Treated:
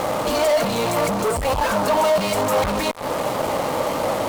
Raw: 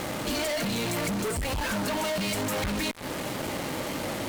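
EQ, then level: band shelf 760 Hz +9.5 dB; +4.0 dB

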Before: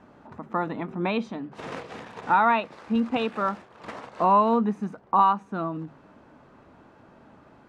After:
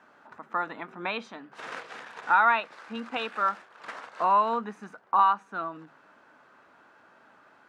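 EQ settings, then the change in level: HPF 1100 Hz 6 dB/oct; bell 1500 Hz +6.5 dB 0.54 oct; 0.0 dB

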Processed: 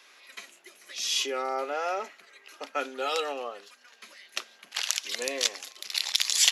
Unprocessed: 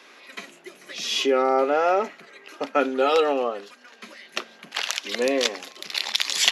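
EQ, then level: HPF 730 Hz 6 dB/oct; high shelf 4700 Hz +8 dB; dynamic EQ 8200 Hz, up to +5 dB, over -39 dBFS, Q 0.72; -7.0 dB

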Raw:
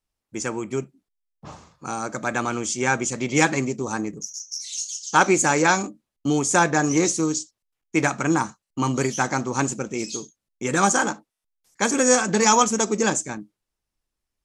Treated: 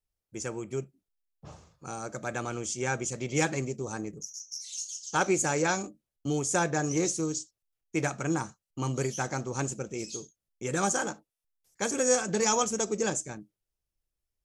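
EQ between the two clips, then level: graphic EQ 250/1000/2000/4000/8000 Hz -9/-9/-6/-5/-4 dB; -2.0 dB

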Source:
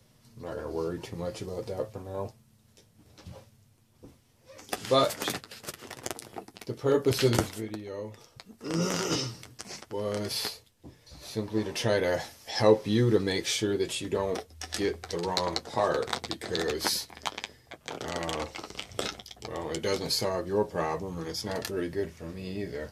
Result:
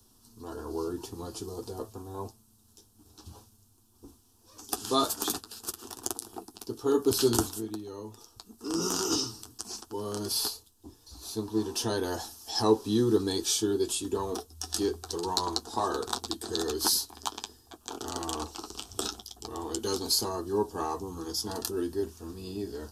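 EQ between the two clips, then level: low shelf 330 Hz +4 dB; high shelf 4800 Hz +8.5 dB; fixed phaser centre 560 Hz, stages 6; 0.0 dB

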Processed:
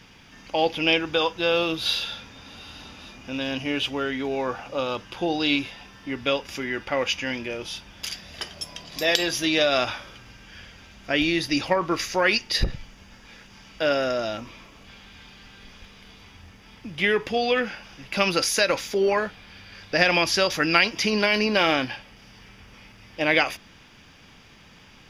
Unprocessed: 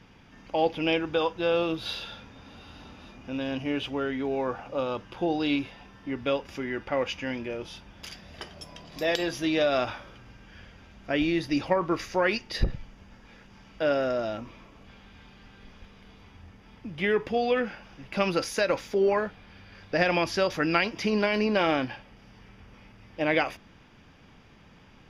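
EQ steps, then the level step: high shelf 2100 Hz +12 dB; +1.0 dB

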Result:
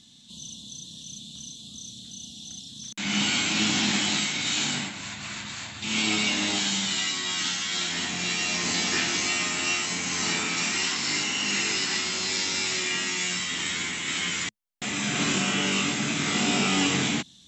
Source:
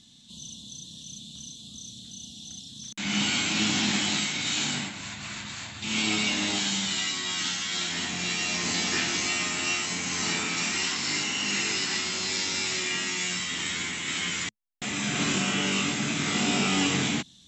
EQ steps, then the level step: low shelf 110 Hz -4 dB; +1.5 dB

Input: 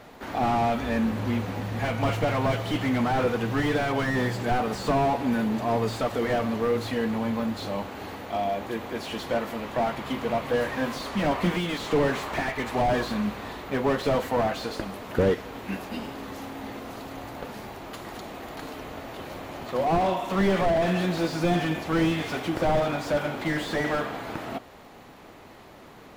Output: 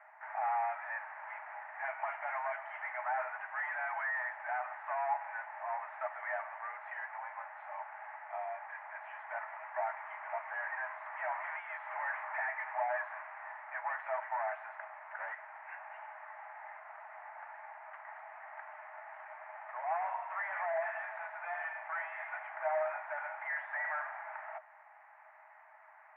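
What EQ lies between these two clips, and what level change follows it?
rippled Chebyshev high-pass 610 Hz, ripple 9 dB; steep low-pass 1800 Hz 48 dB/oct; differentiator; +15.5 dB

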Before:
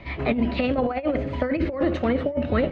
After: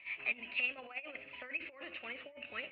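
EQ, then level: band-pass 2600 Hz, Q 9.6; air absorption 220 m; +6.5 dB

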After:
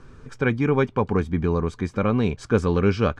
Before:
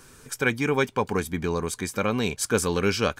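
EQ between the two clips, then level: air absorption 110 m; tilt -2.5 dB/oct; bell 1200 Hz +5 dB 0.21 oct; 0.0 dB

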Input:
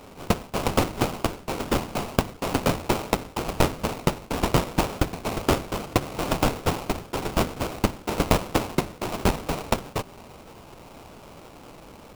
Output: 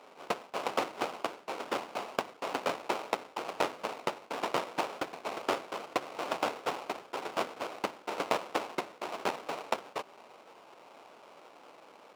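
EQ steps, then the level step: HPF 490 Hz 12 dB/oct; high shelf 5400 Hz -9 dB; high shelf 11000 Hz -8.5 dB; -5.0 dB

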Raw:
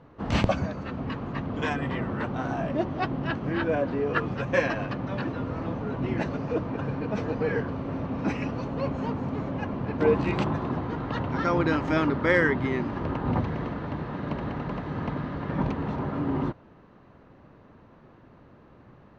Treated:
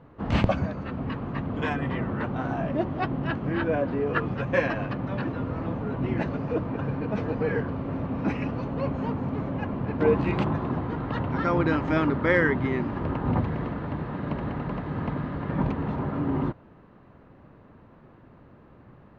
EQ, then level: tone controls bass +2 dB, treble -8 dB; notch 5800 Hz, Q 29; 0.0 dB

